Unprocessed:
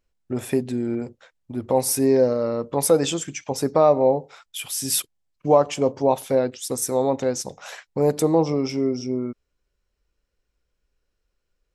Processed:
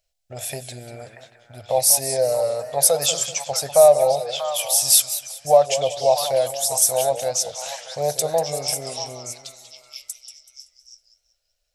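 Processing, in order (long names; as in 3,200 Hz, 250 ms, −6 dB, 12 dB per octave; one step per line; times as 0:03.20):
drawn EQ curve 140 Hz 0 dB, 220 Hz −15 dB, 330 Hz −18 dB, 660 Hz +15 dB, 1,000 Hz −4 dB, 4,200 Hz +14 dB
on a send: echo through a band-pass that steps 635 ms, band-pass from 1,300 Hz, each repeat 1.4 octaves, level −2 dB
on the sum: feedback echo with a swinging delay time 190 ms, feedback 36%, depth 146 cents, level −12 dB
level −5.5 dB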